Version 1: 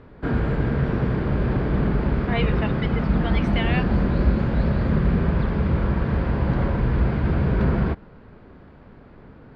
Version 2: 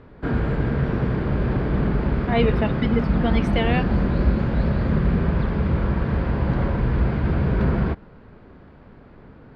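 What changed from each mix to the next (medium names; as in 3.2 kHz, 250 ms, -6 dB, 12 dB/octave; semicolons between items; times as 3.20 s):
speech: remove band-pass filter 2.1 kHz, Q 0.57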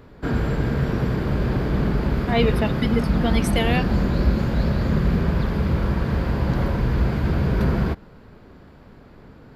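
master: remove low-pass 2.9 kHz 12 dB/octave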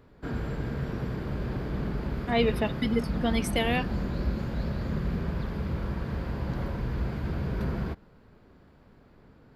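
speech -4.0 dB; background -10.0 dB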